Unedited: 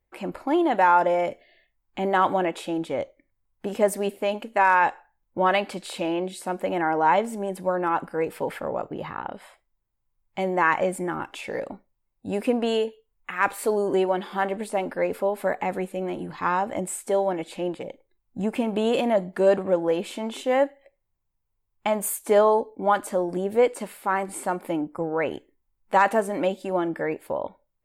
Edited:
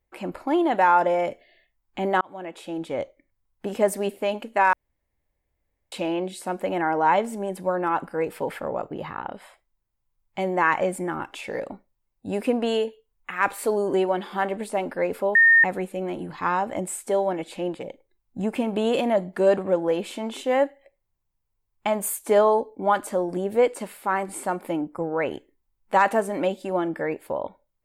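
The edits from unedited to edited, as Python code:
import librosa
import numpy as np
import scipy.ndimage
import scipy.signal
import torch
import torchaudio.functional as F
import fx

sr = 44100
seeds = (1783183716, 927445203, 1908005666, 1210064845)

y = fx.edit(x, sr, fx.fade_in_span(start_s=2.21, length_s=0.81),
    fx.room_tone_fill(start_s=4.73, length_s=1.19),
    fx.bleep(start_s=15.35, length_s=0.29, hz=1830.0, db=-11.5), tone=tone)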